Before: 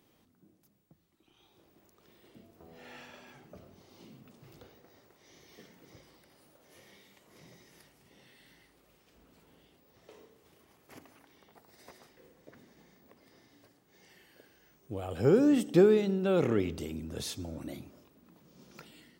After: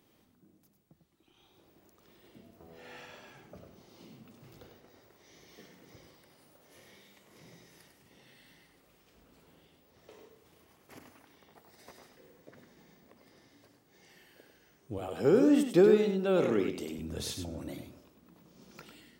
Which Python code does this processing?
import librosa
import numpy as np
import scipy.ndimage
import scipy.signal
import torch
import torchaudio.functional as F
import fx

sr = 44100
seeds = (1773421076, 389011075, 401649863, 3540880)

p1 = fx.highpass(x, sr, hz=190.0, slope=12, at=(14.98, 16.99))
y = p1 + fx.echo_single(p1, sr, ms=99, db=-7.0, dry=0)